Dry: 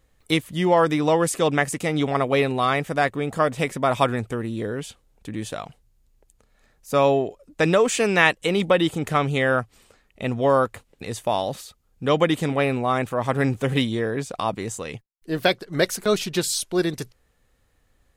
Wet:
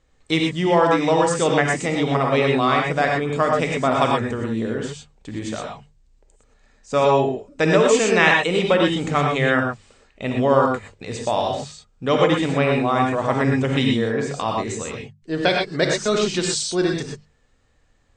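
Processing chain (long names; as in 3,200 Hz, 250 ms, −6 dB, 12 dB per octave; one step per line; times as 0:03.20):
Butterworth low-pass 8,400 Hz 72 dB per octave
mains-hum notches 50/100/150/200 Hz
reverb whose tail is shaped and stops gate 140 ms rising, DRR 0 dB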